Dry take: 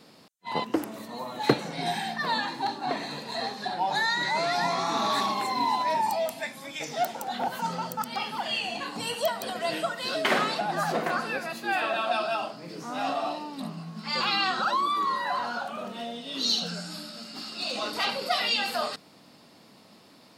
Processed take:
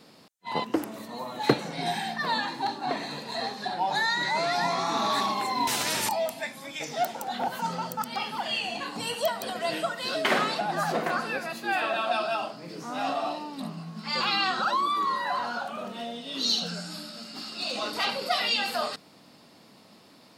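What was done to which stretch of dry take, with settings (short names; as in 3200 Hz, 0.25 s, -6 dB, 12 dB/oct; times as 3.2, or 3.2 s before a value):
5.67–6.09 spectral compressor 4:1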